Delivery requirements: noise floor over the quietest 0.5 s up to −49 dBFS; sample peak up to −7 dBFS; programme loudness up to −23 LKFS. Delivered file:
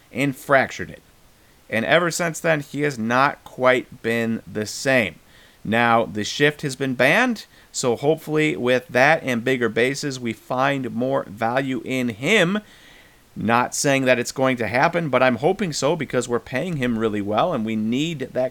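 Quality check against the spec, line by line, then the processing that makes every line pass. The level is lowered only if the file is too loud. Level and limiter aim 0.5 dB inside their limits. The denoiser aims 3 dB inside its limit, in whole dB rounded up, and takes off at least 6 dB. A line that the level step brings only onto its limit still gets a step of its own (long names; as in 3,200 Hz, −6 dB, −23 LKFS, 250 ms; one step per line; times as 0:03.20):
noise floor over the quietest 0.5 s −53 dBFS: in spec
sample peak −3.0 dBFS: out of spec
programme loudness −21.0 LKFS: out of spec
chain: level −2.5 dB
brickwall limiter −7.5 dBFS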